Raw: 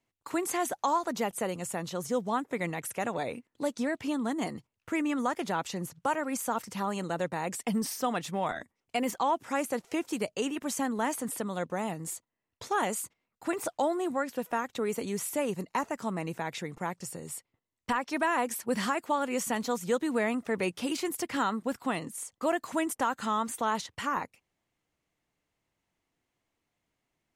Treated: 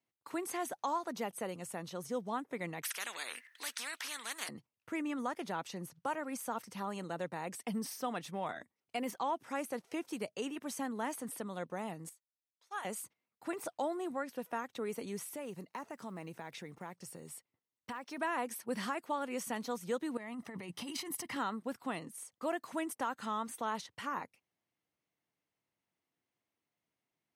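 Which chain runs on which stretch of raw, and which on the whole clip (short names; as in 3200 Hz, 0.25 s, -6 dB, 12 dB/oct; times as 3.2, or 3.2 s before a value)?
2.83–4.49 resonant high-pass 1800 Hz, resonance Q 6.7 + spectral compressor 4:1
12.09–12.85 Bessel high-pass 1000 Hz + upward expander 2.5:1, over -41 dBFS
15.23–18.18 block floating point 7-bit + compressor 2:1, threshold -35 dBFS
20.17–21.36 negative-ratio compressor -35 dBFS + comb 1 ms, depth 45%
whole clip: HPF 110 Hz; notch 7200 Hz, Q 7.1; gain -7.5 dB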